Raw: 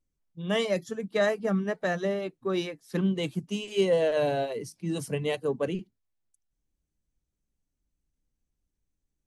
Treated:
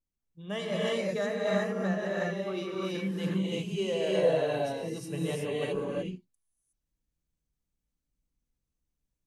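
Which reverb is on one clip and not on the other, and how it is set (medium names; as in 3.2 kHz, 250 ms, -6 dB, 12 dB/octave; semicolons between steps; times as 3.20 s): gated-style reverb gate 390 ms rising, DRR -5.5 dB; trim -8.5 dB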